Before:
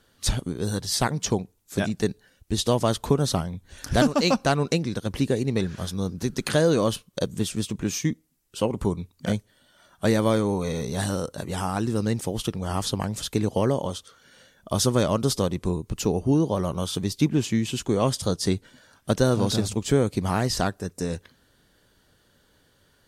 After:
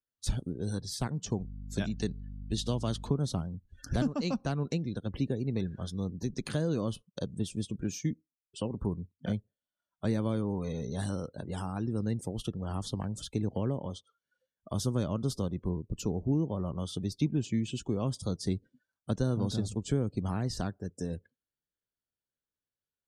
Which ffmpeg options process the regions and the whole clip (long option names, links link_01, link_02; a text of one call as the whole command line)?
ffmpeg -i in.wav -filter_complex "[0:a]asettb=1/sr,asplit=3[link_01][link_02][link_03];[link_01]atrim=end=1.404[link_04];[link_02]atrim=start=1.4:end=3.08,asetpts=PTS-STARTPTS,afade=type=in:duration=0.004:curve=qsin,afade=type=out:start_time=1.676:duration=0.004:curve=qsin,equalizer=frequency=3900:width=0.53:gain=6.5,aeval=exprs='val(0)+0.0178*(sin(2*PI*50*n/s)+sin(2*PI*2*50*n/s)/2+sin(2*PI*3*50*n/s)/3+sin(2*PI*4*50*n/s)/4+sin(2*PI*5*50*n/s)/5)':channel_layout=same[link_05];[link_03]atrim=start=3.076[link_06];[link_04][link_05]acrossfade=duration=0.004:curve1=hsin:curve2=qsin[link_07];[link_07][link_06]acrossfade=duration=0.004:curve1=qsin:curve2=hsin,afftdn=noise_reduction=32:noise_floor=-40,bandreject=frequency=1900:width=20,acrossover=split=290[link_08][link_09];[link_09]acompressor=threshold=-37dB:ratio=2[link_10];[link_08][link_10]amix=inputs=2:normalize=0,volume=-5.5dB" out.wav